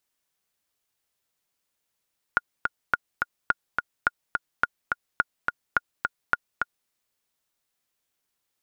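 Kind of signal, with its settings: metronome 212 bpm, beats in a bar 2, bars 8, 1430 Hz, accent 4 dB -6.5 dBFS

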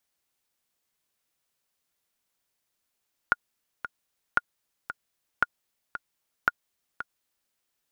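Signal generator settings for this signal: metronome 114 bpm, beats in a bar 2, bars 4, 1430 Hz, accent 12.5 dB -7 dBFS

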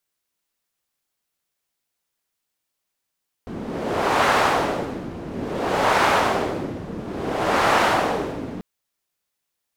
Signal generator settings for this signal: wind-like swept noise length 5.14 s, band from 240 Hz, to 1000 Hz, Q 1.1, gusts 3, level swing 14.5 dB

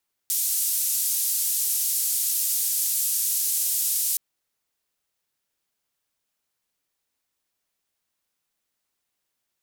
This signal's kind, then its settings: noise band 7100–15000 Hz, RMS -24.5 dBFS 3.87 s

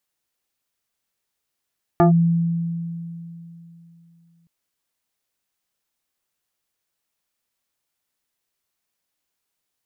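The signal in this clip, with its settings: FM tone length 2.47 s, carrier 168 Hz, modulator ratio 3.08, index 1.7, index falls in 0.12 s linear, decay 3.13 s, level -9.5 dB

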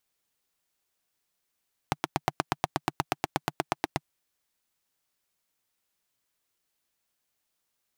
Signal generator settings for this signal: single-cylinder engine model, steady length 2.15 s, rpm 1000, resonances 150/320/740 Hz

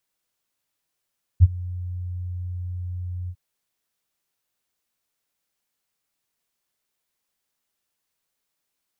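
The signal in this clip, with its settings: ADSR sine 89.6 Hz, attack 33 ms, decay 34 ms, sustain -22 dB, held 1.89 s, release 62 ms -5.5 dBFS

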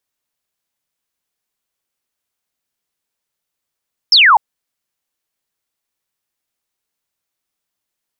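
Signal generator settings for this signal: laser zap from 5500 Hz, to 790 Hz, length 0.25 s sine, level -5 dB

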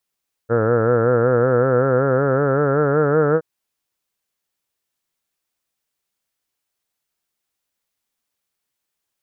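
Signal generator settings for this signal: formant-synthesis vowel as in heard, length 2.92 s, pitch 112 Hz, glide +5.5 st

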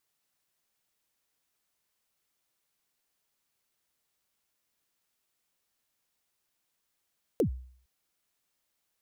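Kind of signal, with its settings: kick drum length 0.46 s, from 540 Hz, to 63 Hz, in 98 ms, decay 0.55 s, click on, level -19.5 dB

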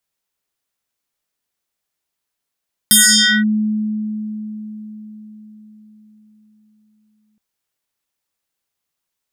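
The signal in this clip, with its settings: FM tone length 4.47 s, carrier 214 Hz, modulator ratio 7.95, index 7.5, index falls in 0.53 s linear, decay 4.95 s, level -6 dB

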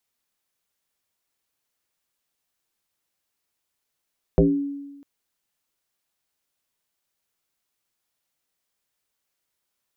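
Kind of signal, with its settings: FM tone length 0.65 s, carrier 282 Hz, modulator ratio 0.4, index 2.8, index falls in 0.42 s exponential, decay 1.16 s, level -11.5 dB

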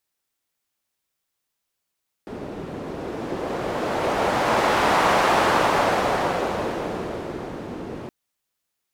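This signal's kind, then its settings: wind-like swept noise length 5.82 s, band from 320 Hz, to 900 Hz, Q 1.1, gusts 1, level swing 15 dB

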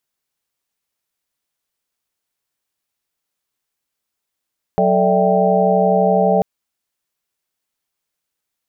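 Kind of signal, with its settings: chord F#3/A4/D5/E5/G5 sine, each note -18 dBFS 1.64 s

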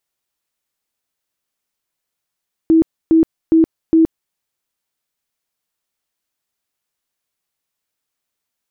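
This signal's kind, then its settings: tone bursts 324 Hz, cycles 39, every 0.41 s, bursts 4, -7 dBFS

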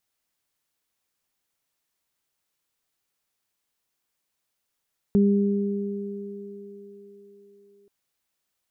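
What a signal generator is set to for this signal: additive tone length 2.73 s, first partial 201 Hz, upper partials -7 dB, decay 3.20 s, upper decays 4.91 s, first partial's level -15 dB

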